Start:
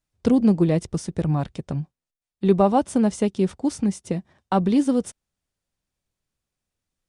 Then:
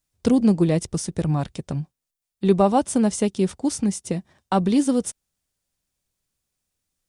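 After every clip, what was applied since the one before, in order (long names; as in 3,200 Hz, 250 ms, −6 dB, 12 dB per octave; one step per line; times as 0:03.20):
high-shelf EQ 4,800 Hz +10 dB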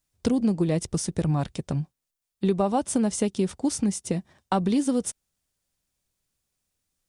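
downward compressor 4 to 1, threshold −20 dBFS, peak gain reduction 8 dB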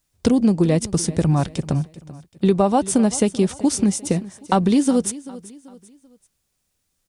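repeating echo 387 ms, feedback 39%, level −18 dB
level +6.5 dB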